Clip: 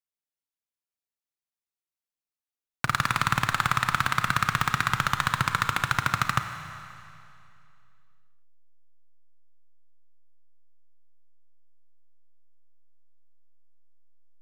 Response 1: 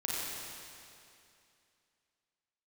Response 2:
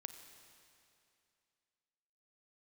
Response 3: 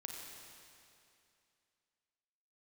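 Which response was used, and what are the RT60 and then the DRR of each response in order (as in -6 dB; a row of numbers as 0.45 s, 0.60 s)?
2; 2.6 s, 2.6 s, 2.6 s; -6.5 dB, 7.5 dB, 0.0 dB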